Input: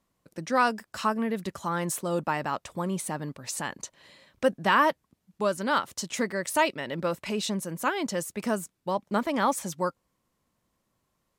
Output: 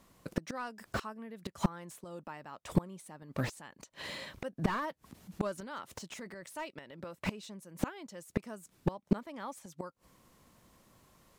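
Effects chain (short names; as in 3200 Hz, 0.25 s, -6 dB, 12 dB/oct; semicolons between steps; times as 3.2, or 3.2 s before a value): flipped gate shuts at -25 dBFS, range -30 dB; 4.57–6.57 transient shaper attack -3 dB, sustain +7 dB; slew limiter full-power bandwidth 8.2 Hz; gain +12.5 dB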